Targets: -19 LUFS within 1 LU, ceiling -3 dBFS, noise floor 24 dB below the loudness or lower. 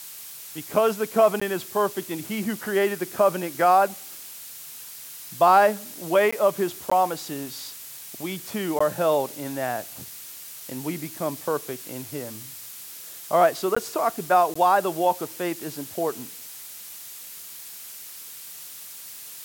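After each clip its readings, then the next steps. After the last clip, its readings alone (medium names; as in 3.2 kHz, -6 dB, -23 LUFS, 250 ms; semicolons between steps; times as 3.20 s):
dropouts 6; longest dropout 15 ms; noise floor -41 dBFS; noise floor target -48 dBFS; loudness -24.0 LUFS; peak level -6.0 dBFS; loudness target -19.0 LUFS
-> interpolate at 1.40/6.31/6.90/8.79/13.75/14.54 s, 15 ms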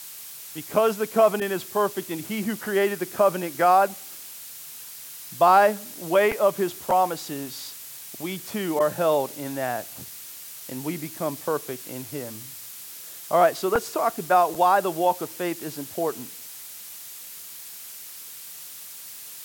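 dropouts 0; noise floor -41 dBFS; noise floor target -48 dBFS
-> noise reduction 7 dB, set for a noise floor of -41 dBFS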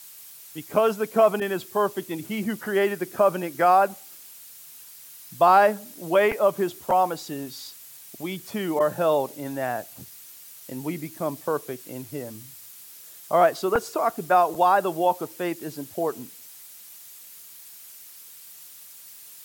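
noise floor -46 dBFS; noise floor target -48 dBFS
-> noise reduction 6 dB, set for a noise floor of -46 dBFS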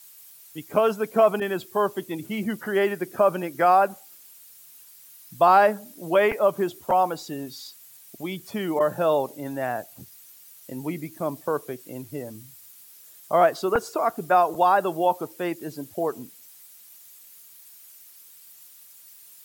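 noise floor -50 dBFS; loudness -24.0 LUFS; peak level -6.0 dBFS; loudness target -19.0 LUFS
-> trim +5 dB; peak limiter -3 dBFS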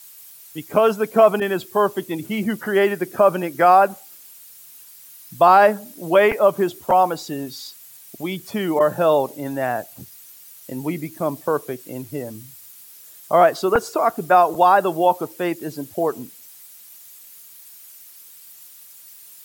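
loudness -19.0 LUFS; peak level -3.0 dBFS; noise floor -45 dBFS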